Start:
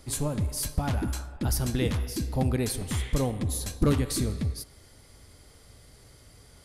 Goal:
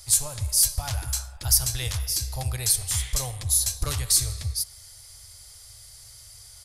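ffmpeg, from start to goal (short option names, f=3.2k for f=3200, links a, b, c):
-af "firequalizer=gain_entry='entry(120,0);entry(180,-28);entry(410,-14);entry(670,-3);entry(2900,3);entry(5100,13)':delay=0.05:min_phase=1"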